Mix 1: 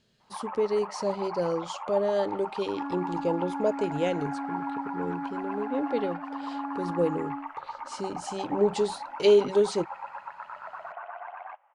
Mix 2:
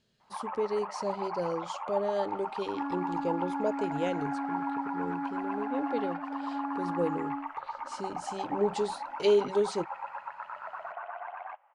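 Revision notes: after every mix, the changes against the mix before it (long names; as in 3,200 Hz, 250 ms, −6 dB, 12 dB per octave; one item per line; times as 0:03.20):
speech −4.5 dB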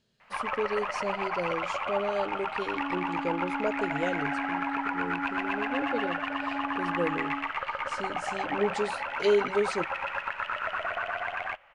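first sound: remove resonant band-pass 870 Hz, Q 3.7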